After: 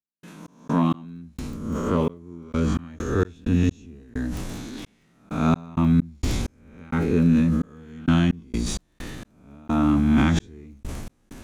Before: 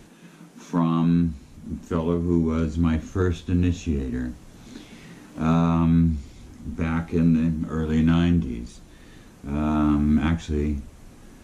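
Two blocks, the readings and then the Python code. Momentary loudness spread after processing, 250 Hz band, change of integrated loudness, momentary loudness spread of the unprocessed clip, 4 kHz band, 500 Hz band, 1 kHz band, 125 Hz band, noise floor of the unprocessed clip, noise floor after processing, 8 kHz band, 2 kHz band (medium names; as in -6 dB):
19 LU, -0.5 dB, -0.5 dB, 16 LU, +3.5 dB, 0.0 dB, +1.0 dB, -1.0 dB, -48 dBFS, -63 dBFS, no reading, +2.0 dB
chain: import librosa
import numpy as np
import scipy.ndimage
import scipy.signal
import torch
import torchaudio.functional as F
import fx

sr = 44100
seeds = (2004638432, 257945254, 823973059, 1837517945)

y = fx.spec_swells(x, sr, rise_s=0.88)
y = fx.dmg_crackle(y, sr, seeds[0], per_s=18.0, level_db=-37.0)
y = fx.step_gate(y, sr, bpm=65, pattern='.x.x..xxx..x', floor_db=-60.0, edge_ms=4.5)
y = fx.sustainer(y, sr, db_per_s=21.0)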